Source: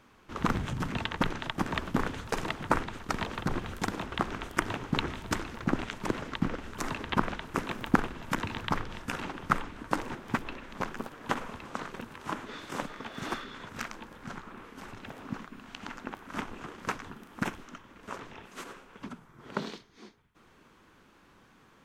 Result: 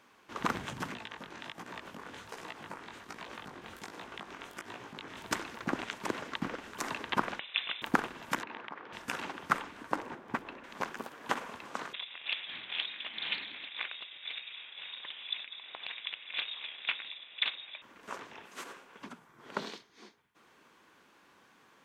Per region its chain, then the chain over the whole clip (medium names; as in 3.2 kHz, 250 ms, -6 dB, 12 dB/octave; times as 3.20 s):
0.94–5.17 s: compression 5:1, threshold -34 dBFS + chorus 1.3 Hz, delay 16.5 ms, depth 5.9 ms
7.39–7.82 s: high-pass 250 Hz 6 dB/octave + frequency inversion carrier 3.8 kHz
8.43–8.93 s: compression 12:1, threshold -33 dBFS + band-pass 260–2200 Hz
9.91–10.64 s: treble shelf 2.4 kHz -10 dB + tape noise reduction on one side only decoder only
11.93–17.82 s: frequency inversion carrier 3.7 kHz + loudspeaker Doppler distortion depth 0.22 ms
whole clip: high-pass 470 Hz 6 dB/octave; band-stop 1.3 kHz, Q 20